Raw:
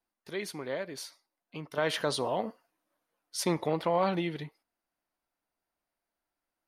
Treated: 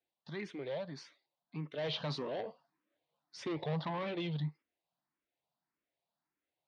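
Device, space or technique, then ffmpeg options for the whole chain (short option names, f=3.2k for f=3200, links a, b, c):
barber-pole phaser into a guitar amplifier: -filter_complex "[0:a]asplit=2[a][b];[b]afreqshift=1.7[c];[a][c]amix=inputs=2:normalize=1,asoftclip=type=tanh:threshold=-33.5dB,highpass=92,equalizer=f=150:t=q:w=4:g=9,equalizer=f=1.4k:t=q:w=4:g=-5,equalizer=f=3.7k:t=q:w=4:g=4,lowpass=f=4.5k:w=0.5412,lowpass=f=4.5k:w=1.3066"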